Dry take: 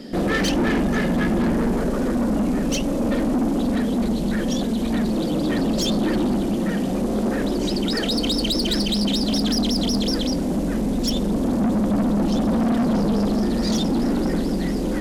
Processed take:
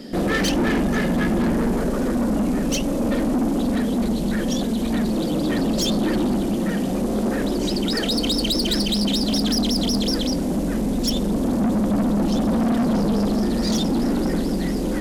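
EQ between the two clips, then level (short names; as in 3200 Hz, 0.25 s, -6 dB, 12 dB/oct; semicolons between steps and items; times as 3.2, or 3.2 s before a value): high shelf 8500 Hz +5 dB; 0.0 dB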